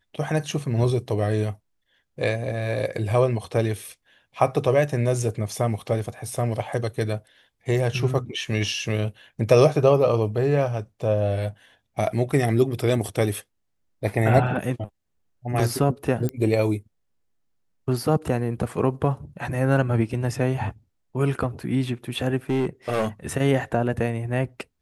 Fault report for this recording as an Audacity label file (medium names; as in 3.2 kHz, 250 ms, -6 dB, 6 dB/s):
16.290000	16.290000	pop -14 dBFS
22.490000	23.070000	clipped -18.5 dBFS